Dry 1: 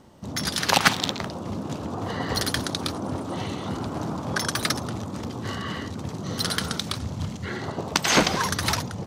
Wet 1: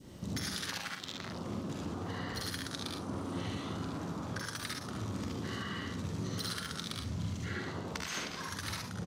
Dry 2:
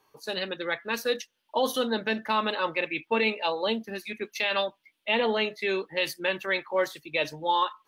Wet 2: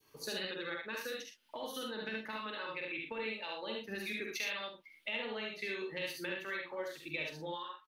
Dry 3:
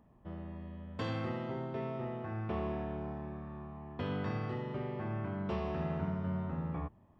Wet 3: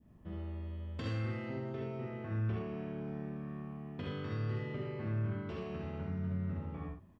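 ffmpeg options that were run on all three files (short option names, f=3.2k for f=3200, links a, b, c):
-af "adynamicequalizer=threshold=0.01:dfrequency=1200:dqfactor=0.75:tfrequency=1200:tqfactor=0.75:attack=5:release=100:ratio=0.375:range=3:mode=boostabove:tftype=bell,acompressor=threshold=-37dB:ratio=16,equalizer=f=820:w=0.98:g=-9,aecho=1:1:46|64|75|109|120:0.531|0.531|0.668|0.299|0.251,volume=1dB"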